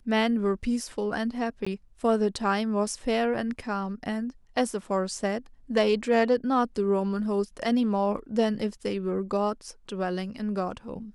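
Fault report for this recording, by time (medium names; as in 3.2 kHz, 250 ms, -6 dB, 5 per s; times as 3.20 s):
1.65–1.67 s: dropout 15 ms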